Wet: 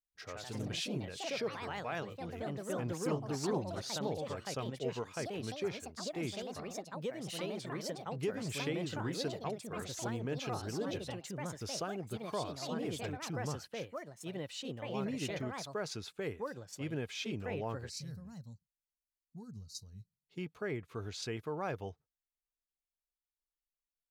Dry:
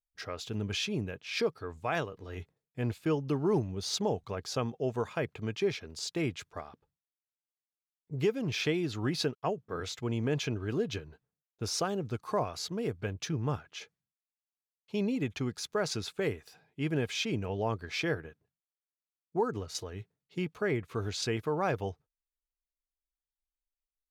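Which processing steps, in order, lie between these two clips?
delay with pitch and tempo change per echo 121 ms, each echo +3 semitones, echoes 3
gain on a spectral selection 0:17.90–0:20.26, 250–3,800 Hz −22 dB
level −7.5 dB

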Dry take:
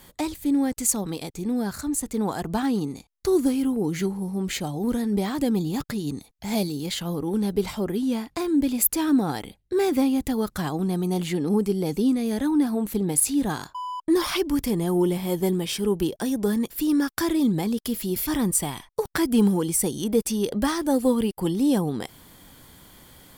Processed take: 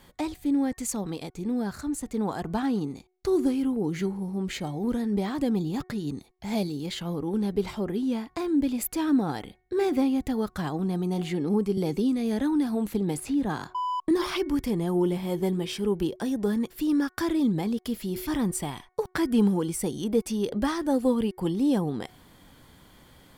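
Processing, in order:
high-shelf EQ 6,400 Hz −11 dB
hum removal 367.8 Hz, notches 6
0:11.77–0:14.11: multiband upward and downward compressor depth 70%
level −2.5 dB

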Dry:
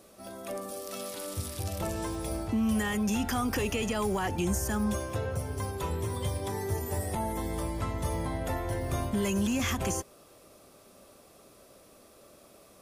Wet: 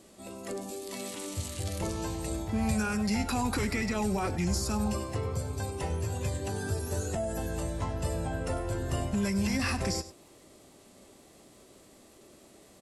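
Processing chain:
surface crackle 110 per second −61 dBFS
single-tap delay 98 ms −15 dB
formants moved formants −4 semitones

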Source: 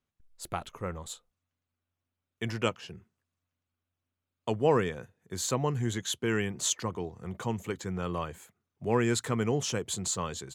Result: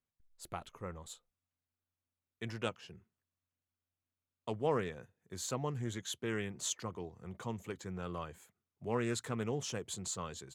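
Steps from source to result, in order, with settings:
highs frequency-modulated by the lows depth 0.13 ms
level −8 dB

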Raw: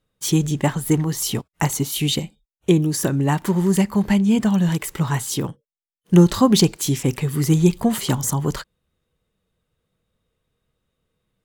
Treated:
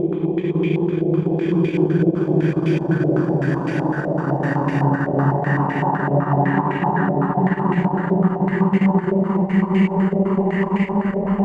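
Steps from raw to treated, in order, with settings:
extreme stretch with random phases 8.1×, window 1.00 s, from 0:02.54
transient designer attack 0 dB, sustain −8 dB
low-pass on a step sequencer 7.9 Hz 630–2,200 Hz

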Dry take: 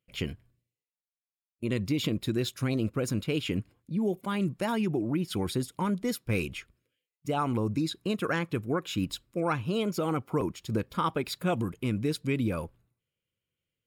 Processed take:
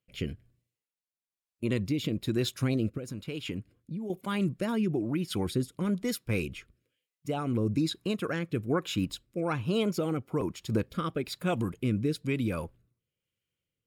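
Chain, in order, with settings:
0:02.97–0:04.10: downward compressor 6 to 1, threshold −33 dBFS, peak gain reduction 9 dB
rotating-speaker cabinet horn 1.1 Hz
level +1.5 dB

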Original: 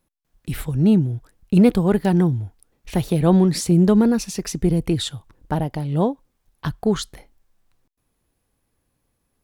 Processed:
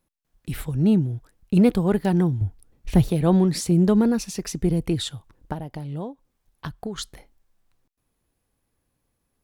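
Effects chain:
0:02.41–0:03.11: low-shelf EQ 250 Hz +12 dB
0:05.52–0:06.98: downward compressor 4 to 1, threshold −27 dBFS, peak gain reduction 11.5 dB
level −3 dB

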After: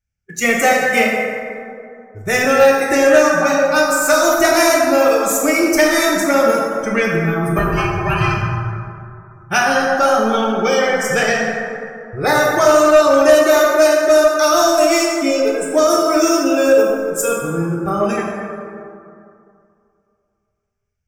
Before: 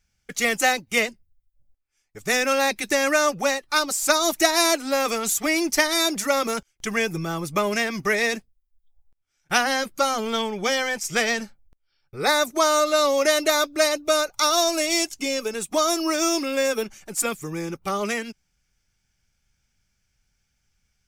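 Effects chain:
0:07.58–0:08.37: ring modulation 580 Hz
noise reduction from a noise print of the clip's start 19 dB
graphic EQ with 15 bands 100 Hz +10 dB, 1,000 Hz −5 dB, 4,000 Hz −12 dB, 10,000 Hz −6 dB
dense smooth reverb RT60 2.5 s, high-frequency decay 0.4×, DRR −3 dB
soft clipping −8.5 dBFS, distortion −20 dB
level +6.5 dB

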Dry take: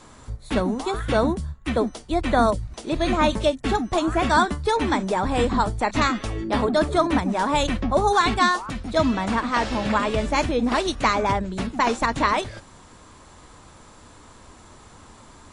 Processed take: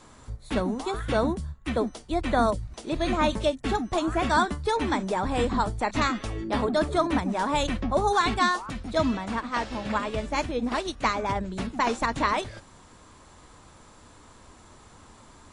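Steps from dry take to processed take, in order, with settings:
0:09.17–0:11.36: expander for the loud parts 1.5 to 1, over −29 dBFS
level −4 dB

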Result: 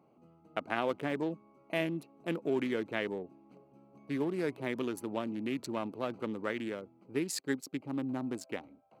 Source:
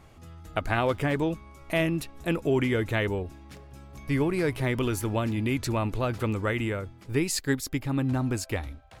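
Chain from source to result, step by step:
adaptive Wiener filter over 25 samples
high-pass filter 180 Hz 24 dB per octave
level −6 dB

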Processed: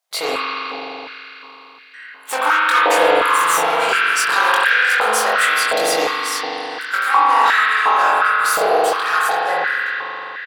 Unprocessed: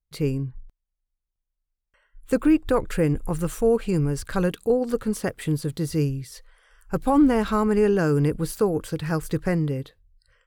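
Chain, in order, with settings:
fade-out on the ending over 2.88 s
0:06.98–0:08.40: downward compressor 2.5 to 1, threshold −29 dBFS, peak gain reduction 10.5 dB
mid-hump overdrive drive 24 dB, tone 5,600 Hz, clips at −9.5 dBFS
high-shelf EQ 3,000 Hz +8.5 dB
double-tracking delay 23 ms −3 dB
spring reverb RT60 4 s, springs 41 ms, chirp 45 ms, DRR −7.5 dB
high-pass on a step sequencer 2.8 Hz 680–1,700 Hz
level −5.5 dB

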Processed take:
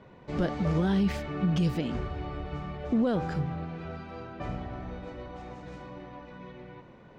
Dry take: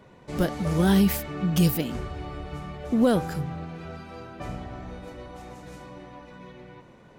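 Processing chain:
brickwall limiter −18 dBFS, peak gain reduction 7.5 dB
high-frequency loss of the air 140 metres

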